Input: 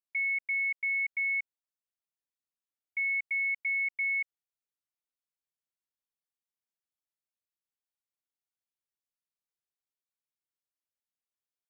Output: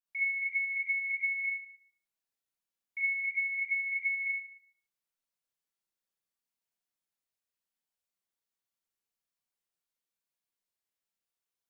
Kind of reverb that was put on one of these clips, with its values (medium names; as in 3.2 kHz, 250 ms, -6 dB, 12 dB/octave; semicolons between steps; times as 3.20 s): Schroeder reverb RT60 0.58 s, combs from 33 ms, DRR -8 dB; trim -6 dB